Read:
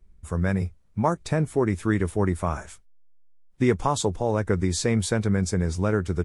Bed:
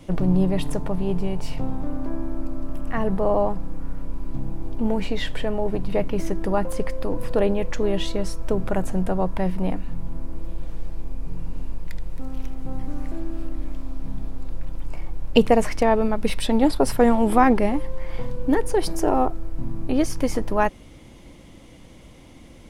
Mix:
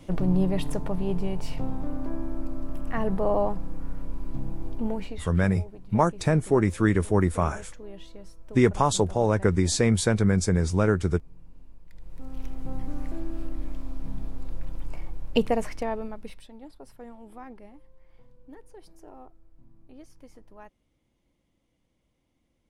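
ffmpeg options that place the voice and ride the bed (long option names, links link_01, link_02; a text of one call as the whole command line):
ffmpeg -i stem1.wav -i stem2.wav -filter_complex "[0:a]adelay=4950,volume=1.5dB[link_01];[1:a]volume=13dB,afade=type=out:start_time=4.68:duration=0.62:silence=0.149624,afade=type=in:start_time=11.9:duration=0.67:silence=0.149624,afade=type=out:start_time=14.82:duration=1.67:silence=0.0630957[link_02];[link_01][link_02]amix=inputs=2:normalize=0" out.wav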